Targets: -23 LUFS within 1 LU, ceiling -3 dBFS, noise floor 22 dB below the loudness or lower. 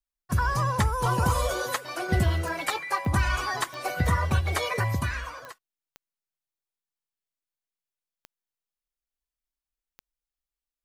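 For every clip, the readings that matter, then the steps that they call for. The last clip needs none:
clicks 8; loudness -27.0 LUFS; peak -12.5 dBFS; loudness target -23.0 LUFS
-> de-click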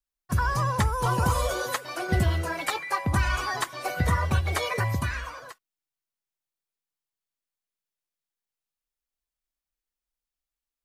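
clicks 0; loudness -27.0 LUFS; peak -12.5 dBFS; loudness target -23.0 LUFS
-> gain +4 dB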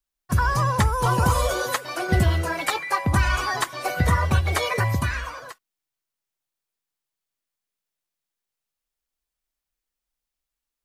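loudness -23.0 LUFS; peak -8.5 dBFS; noise floor -86 dBFS

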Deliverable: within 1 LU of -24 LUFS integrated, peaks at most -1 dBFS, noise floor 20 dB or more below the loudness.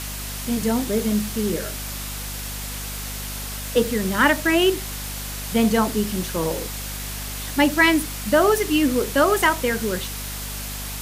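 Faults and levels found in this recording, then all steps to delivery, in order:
hum 50 Hz; harmonics up to 250 Hz; hum level -32 dBFS; noise floor -31 dBFS; noise floor target -42 dBFS; loudness -22.0 LUFS; peak -5.5 dBFS; loudness target -24.0 LUFS
-> de-hum 50 Hz, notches 5; denoiser 11 dB, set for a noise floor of -31 dBFS; gain -2 dB

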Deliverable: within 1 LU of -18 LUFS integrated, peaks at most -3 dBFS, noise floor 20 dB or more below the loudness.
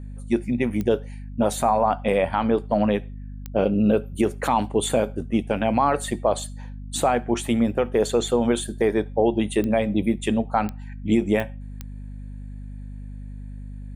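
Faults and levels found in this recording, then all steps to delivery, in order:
clicks 7; hum 50 Hz; harmonics up to 250 Hz; hum level -33 dBFS; loudness -23.0 LUFS; peak -8.5 dBFS; loudness target -18.0 LUFS
-> de-click; de-hum 50 Hz, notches 5; gain +5 dB

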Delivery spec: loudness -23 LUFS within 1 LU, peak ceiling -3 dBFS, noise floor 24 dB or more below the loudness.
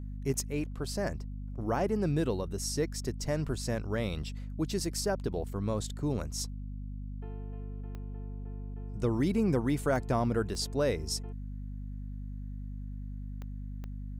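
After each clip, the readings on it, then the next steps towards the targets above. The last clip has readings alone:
clicks 5; hum 50 Hz; harmonics up to 250 Hz; hum level -37 dBFS; loudness -34.0 LUFS; peak -15.5 dBFS; loudness target -23.0 LUFS
-> de-click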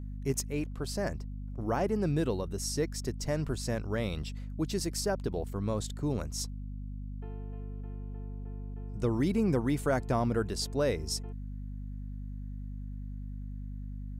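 clicks 0; hum 50 Hz; harmonics up to 250 Hz; hum level -37 dBFS
-> notches 50/100/150/200/250 Hz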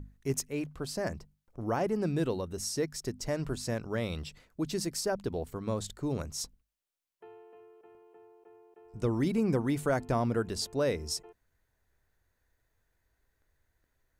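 hum none; loudness -33.0 LUFS; peak -16.0 dBFS; loudness target -23.0 LUFS
-> gain +10 dB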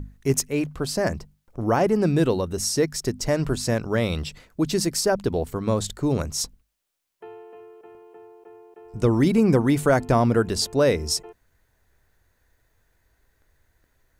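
loudness -23.0 LUFS; peak -6.0 dBFS; noise floor -69 dBFS

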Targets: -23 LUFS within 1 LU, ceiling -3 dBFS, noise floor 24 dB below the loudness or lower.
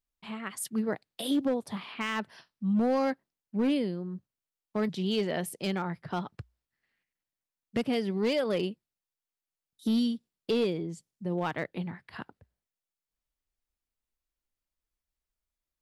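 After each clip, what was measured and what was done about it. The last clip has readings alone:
clipped 0.7%; flat tops at -21.5 dBFS; loudness -31.5 LUFS; peak -21.5 dBFS; loudness target -23.0 LUFS
-> clip repair -21.5 dBFS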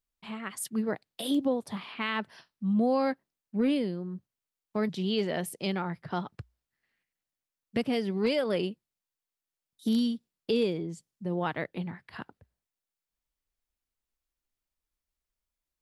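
clipped 0.0%; loudness -31.0 LUFS; peak -15.5 dBFS; loudness target -23.0 LUFS
-> gain +8 dB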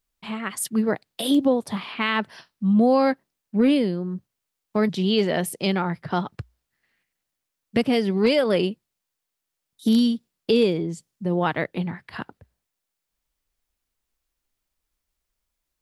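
loudness -23.0 LUFS; peak -7.5 dBFS; noise floor -83 dBFS

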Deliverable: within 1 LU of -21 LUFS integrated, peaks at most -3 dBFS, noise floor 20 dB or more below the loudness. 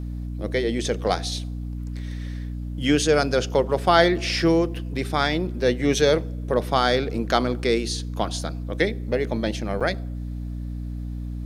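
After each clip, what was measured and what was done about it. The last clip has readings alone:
dropouts 1; longest dropout 6.7 ms; hum 60 Hz; harmonics up to 300 Hz; hum level -28 dBFS; loudness -24.0 LUFS; peak -2.0 dBFS; loudness target -21.0 LUFS
-> interpolate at 9.8, 6.7 ms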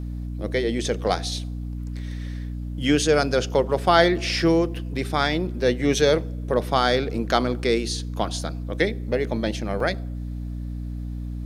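dropouts 0; hum 60 Hz; harmonics up to 300 Hz; hum level -28 dBFS
-> de-hum 60 Hz, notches 5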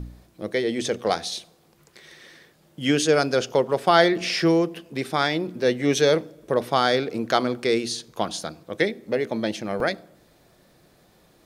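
hum none; loudness -23.5 LUFS; peak -2.5 dBFS; loudness target -21.0 LUFS
-> gain +2.5 dB; limiter -3 dBFS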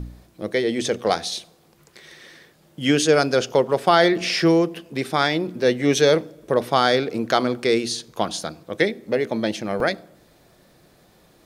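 loudness -21.0 LUFS; peak -3.0 dBFS; noise floor -56 dBFS

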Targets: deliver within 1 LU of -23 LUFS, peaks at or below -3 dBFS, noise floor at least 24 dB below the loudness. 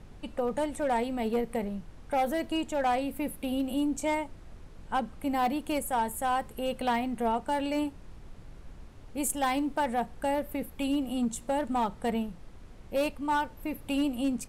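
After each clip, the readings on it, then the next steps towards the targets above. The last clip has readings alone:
clipped 1.3%; flat tops at -22.0 dBFS; noise floor -49 dBFS; noise floor target -55 dBFS; loudness -31.0 LUFS; peak -22.0 dBFS; loudness target -23.0 LUFS
-> clip repair -22 dBFS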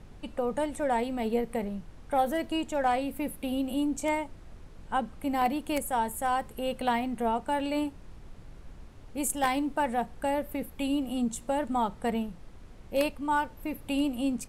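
clipped 0.0%; noise floor -49 dBFS; noise floor target -55 dBFS
-> noise print and reduce 6 dB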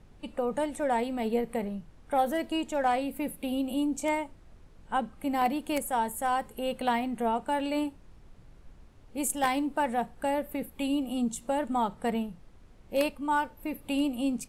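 noise floor -55 dBFS; loudness -30.5 LUFS; peak -13.0 dBFS; loudness target -23.0 LUFS
-> gain +7.5 dB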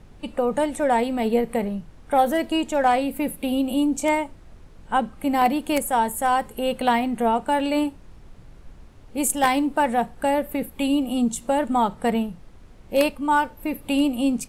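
loudness -23.0 LUFS; peak -5.5 dBFS; noise floor -47 dBFS

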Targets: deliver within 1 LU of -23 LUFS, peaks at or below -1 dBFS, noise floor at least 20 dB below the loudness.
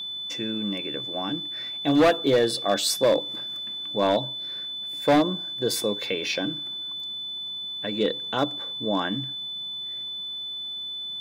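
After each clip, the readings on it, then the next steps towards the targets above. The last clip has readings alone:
clipped 0.9%; flat tops at -14.0 dBFS; steady tone 3500 Hz; tone level -31 dBFS; loudness -26.0 LUFS; peak -14.0 dBFS; loudness target -23.0 LUFS
-> clip repair -14 dBFS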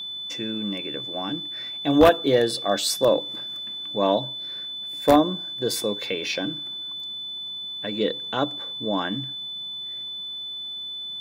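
clipped 0.0%; steady tone 3500 Hz; tone level -31 dBFS
-> notch 3500 Hz, Q 30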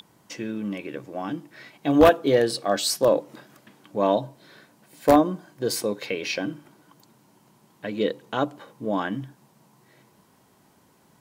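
steady tone none; loudness -24.5 LUFS; peak -4.5 dBFS; loudness target -23.0 LUFS
-> gain +1.5 dB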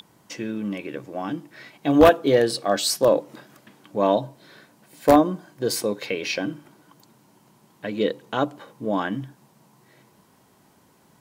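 loudness -23.0 LUFS; peak -3.0 dBFS; noise floor -59 dBFS

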